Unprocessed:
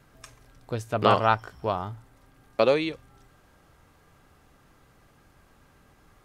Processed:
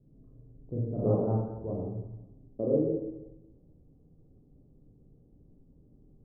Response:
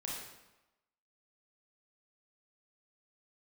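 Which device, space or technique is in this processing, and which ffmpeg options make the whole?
next room: -filter_complex "[0:a]lowpass=f=410:w=0.5412,lowpass=f=410:w=1.3066[a];[1:a]atrim=start_sample=2205[b];[a][b]afir=irnorm=-1:irlink=0,asettb=1/sr,asplit=3[c][d][e];[c]atrim=end=0.994[f];[d]atrim=start=0.99:end=1.73,asetpts=PTS-STARTPTS,afade=t=in:d=0.004:c=qsin,afade=t=out:st=0.736:d=0.004:c=qsin,equalizer=f=2.1k:w=0.39:g=7.5[g];[e]atrim=start=1.726[h];[f][g]acrossfade=d=0.004:c1=hsin:c2=qsin[i];[i][h]acrossfade=d=0.004:c1=qsin:c2=hsin,volume=1dB"

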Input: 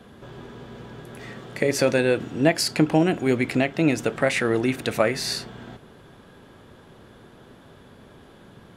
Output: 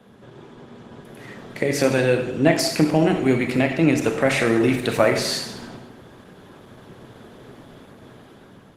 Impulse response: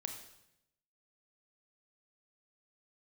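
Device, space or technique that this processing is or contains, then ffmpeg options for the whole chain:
far-field microphone of a smart speaker: -filter_complex "[1:a]atrim=start_sample=2205[a];[0:a][a]afir=irnorm=-1:irlink=0,highpass=f=87:w=0.5412,highpass=f=87:w=1.3066,dynaudnorm=f=510:g=5:m=8dB" -ar 48000 -c:a libopus -b:a 16k

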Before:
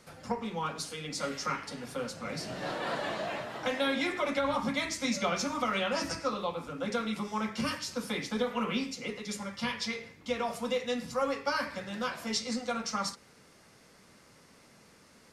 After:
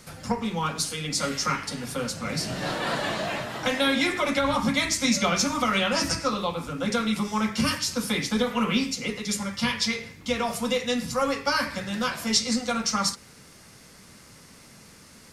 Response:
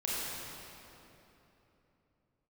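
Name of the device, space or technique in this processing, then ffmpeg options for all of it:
smiley-face EQ: -af "lowshelf=f=200:g=6,equalizer=f=520:t=o:w=1.9:g=-3.5,highshelf=f=5.3k:g=7,volume=7dB"

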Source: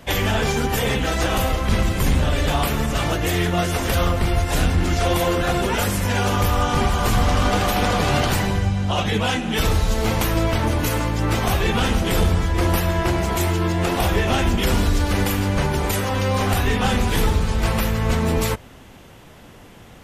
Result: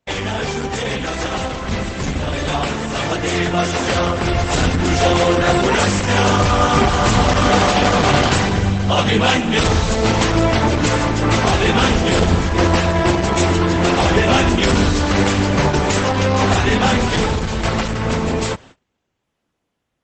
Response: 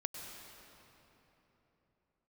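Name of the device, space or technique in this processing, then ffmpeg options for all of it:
video call: -filter_complex "[0:a]asplit=3[a][b][c];[a]afade=t=out:st=2.72:d=0.02[d];[b]highpass=f=91:p=1,afade=t=in:st=2.72:d=0.02,afade=t=out:st=4.24:d=0.02[e];[c]afade=t=in:st=4.24:d=0.02[f];[d][e][f]amix=inputs=3:normalize=0,highpass=f=110:p=1,dynaudnorm=f=760:g=9:m=15dB,agate=range=-29dB:threshold=-38dB:ratio=16:detection=peak" -ar 48000 -c:a libopus -b:a 12k

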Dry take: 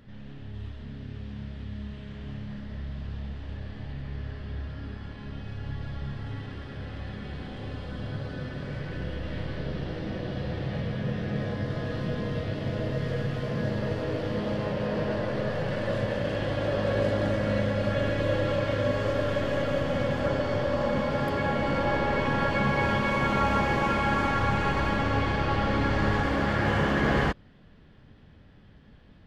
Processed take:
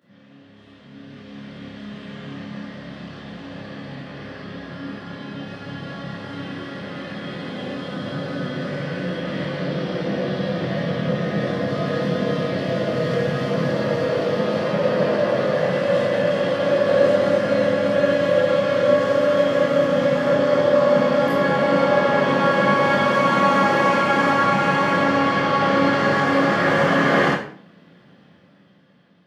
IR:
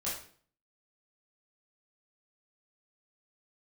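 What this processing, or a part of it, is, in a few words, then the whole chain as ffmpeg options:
far laptop microphone: -filter_complex "[0:a]highpass=180[a];[1:a]atrim=start_sample=2205[b];[a][b]afir=irnorm=-1:irlink=0,highpass=f=110:w=0.5412,highpass=f=110:w=1.3066,dynaudnorm=f=220:g=11:m=10.5dB,volume=-3dB"

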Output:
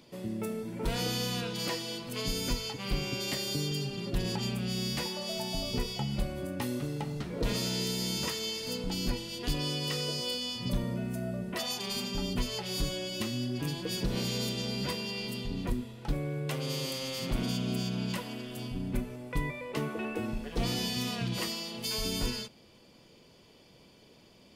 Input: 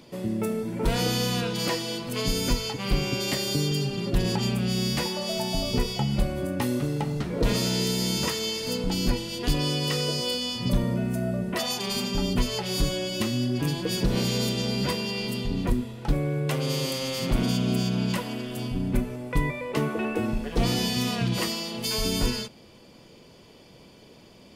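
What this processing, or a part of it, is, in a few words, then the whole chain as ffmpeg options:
presence and air boost: -af "equalizer=f=3.7k:t=o:w=1.8:g=2.5,highshelf=f=12k:g=3.5,volume=-7.5dB"

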